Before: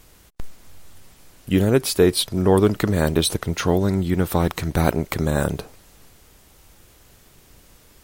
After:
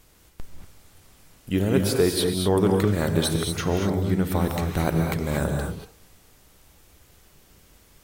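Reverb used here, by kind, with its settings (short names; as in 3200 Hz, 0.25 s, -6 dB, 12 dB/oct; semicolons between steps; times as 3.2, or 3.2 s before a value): non-linear reverb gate 0.26 s rising, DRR 2 dB; gain -5.5 dB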